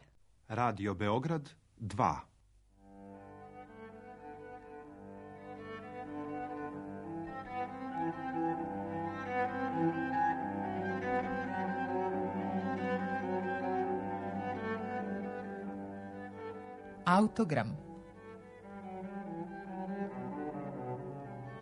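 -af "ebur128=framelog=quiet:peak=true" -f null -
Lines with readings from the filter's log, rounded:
Integrated loudness:
  I:         -37.1 LUFS
  Threshold: -48.1 LUFS
Loudness range:
  LRA:        10.3 LU
  Threshold: -58.0 LUFS
  LRA low:   -45.9 LUFS
  LRA high:  -35.5 LUFS
True peak:
  Peak:      -13.6 dBFS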